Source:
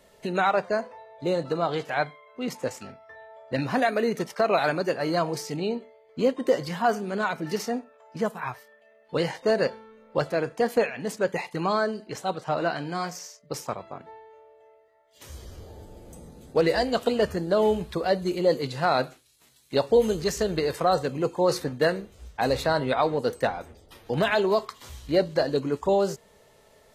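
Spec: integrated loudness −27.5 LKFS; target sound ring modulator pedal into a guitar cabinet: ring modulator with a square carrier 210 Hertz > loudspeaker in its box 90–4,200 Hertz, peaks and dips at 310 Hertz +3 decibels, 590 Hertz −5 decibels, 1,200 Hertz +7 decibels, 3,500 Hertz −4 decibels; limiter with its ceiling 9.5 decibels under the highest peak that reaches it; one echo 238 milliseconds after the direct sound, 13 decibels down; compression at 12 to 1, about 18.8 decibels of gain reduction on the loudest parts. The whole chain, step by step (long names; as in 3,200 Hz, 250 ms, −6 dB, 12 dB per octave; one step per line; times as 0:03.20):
downward compressor 12 to 1, threshold −36 dBFS
brickwall limiter −30.5 dBFS
single-tap delay 238 ms −13 dB
ring modulator with a square carrier 210 Hz
loudspeaker in its box 90–4,200 Hz, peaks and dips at 310 Hz +3 dB, 590 Hz −5 dB, 1,200 Hz +7 dB, 3,500 Hz −4 dB
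level +15 dB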